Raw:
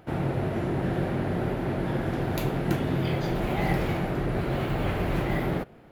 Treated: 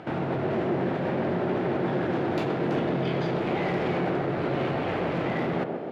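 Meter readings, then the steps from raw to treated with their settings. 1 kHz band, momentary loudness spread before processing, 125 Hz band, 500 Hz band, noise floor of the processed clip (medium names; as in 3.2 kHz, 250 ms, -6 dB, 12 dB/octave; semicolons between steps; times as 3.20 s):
+2.5 dB, 2 LU, -4.0 dB, +3.5 dB, -31 dBFS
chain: in parallel at -1 dB: compressor with a negative ratio -34 dBFS, ratio -0.5; on the sum: hard clipper -22.5 dBFS, distortion -13 dB; band-pass 160–4100 Hz; band-passed feedback delay 133 ms, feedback 76%, band-pass 470 Hz, level -3.5 dB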